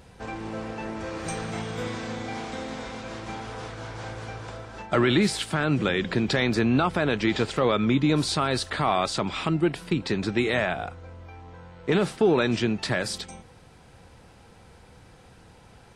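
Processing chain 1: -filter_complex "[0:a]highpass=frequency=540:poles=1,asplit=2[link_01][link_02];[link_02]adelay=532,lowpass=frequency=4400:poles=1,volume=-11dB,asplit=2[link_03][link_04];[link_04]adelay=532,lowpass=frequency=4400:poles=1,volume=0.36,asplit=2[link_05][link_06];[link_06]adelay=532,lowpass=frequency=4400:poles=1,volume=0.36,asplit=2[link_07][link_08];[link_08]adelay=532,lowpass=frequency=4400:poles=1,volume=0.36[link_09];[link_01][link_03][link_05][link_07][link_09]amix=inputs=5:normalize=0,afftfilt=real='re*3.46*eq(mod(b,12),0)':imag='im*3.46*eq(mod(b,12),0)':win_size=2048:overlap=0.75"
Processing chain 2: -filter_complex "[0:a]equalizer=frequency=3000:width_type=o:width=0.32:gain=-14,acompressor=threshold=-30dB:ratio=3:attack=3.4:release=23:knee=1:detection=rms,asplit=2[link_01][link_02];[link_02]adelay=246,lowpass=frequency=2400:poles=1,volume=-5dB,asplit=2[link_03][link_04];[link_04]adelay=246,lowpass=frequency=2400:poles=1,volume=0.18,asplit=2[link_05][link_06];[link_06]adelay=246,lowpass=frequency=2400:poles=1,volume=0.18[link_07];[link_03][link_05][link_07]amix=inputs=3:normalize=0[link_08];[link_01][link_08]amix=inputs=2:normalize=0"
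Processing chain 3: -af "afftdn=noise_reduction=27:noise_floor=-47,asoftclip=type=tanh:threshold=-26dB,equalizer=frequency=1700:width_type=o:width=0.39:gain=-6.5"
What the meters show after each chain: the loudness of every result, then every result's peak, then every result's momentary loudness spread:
−32.5, −32.0, −32.5 LKFS; −13.0, −17.0, −24.0 dBFS; 14, 22, 10 LU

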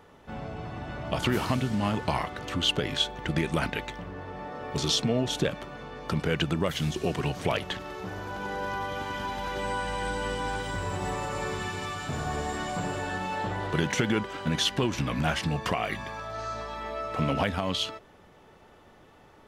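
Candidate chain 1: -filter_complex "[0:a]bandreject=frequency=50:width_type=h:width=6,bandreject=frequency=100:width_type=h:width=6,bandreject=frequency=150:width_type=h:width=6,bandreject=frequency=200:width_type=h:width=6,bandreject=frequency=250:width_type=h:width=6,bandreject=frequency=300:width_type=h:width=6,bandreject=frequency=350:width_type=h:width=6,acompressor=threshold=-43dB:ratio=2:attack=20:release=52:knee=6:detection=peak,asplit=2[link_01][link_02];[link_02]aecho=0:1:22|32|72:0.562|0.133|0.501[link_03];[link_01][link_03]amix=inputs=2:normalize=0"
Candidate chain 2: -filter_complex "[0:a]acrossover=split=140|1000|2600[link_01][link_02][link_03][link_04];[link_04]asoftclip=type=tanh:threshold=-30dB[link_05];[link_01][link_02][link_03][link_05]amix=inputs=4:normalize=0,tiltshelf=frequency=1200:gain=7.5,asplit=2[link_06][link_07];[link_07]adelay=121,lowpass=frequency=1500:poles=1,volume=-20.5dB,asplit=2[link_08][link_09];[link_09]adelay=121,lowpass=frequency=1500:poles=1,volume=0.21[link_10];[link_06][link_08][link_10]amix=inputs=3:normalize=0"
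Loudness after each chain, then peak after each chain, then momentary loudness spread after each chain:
−35.5, −26.0 LKFS; −18.5, −6.5 dBFS; 7, 11 LU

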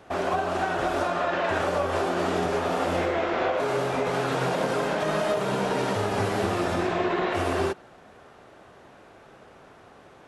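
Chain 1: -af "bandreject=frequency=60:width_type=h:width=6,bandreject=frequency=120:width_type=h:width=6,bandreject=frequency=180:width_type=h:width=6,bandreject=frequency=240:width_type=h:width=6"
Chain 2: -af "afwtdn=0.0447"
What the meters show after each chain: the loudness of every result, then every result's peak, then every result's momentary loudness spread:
−26.0, −27.0 LKFS; −12.5, −13.0 dBFS; 1, 1 LU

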